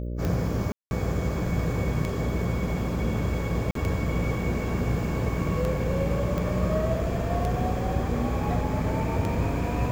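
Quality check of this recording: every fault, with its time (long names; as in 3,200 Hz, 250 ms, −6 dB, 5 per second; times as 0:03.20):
mains buzz 60 Hz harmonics 10 −31 dBFS
scratch tick 33 1/3 rpm −16 dBFS
0:00.72–0:00.91: drop-out 191 ms
0:03.71–0:03.75: drop-out 43 ms
0:06.38: click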